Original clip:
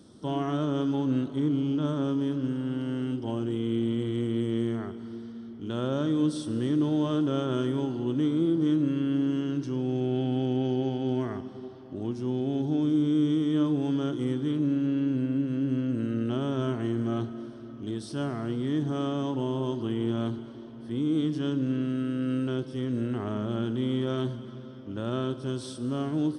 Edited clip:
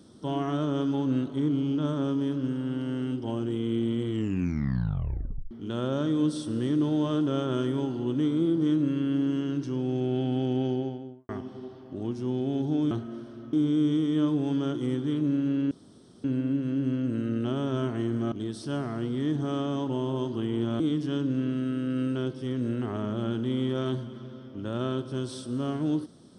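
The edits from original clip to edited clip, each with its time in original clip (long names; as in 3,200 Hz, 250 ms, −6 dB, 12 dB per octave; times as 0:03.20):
0:04.10: tape stop 1.41 s
0:10.60–0:11.29: fade out and dull
0:15.09: splice in room tone 0.53 s
0:17.17–0:17.79: move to 0:12.91
0:20.27–0:21.12: remove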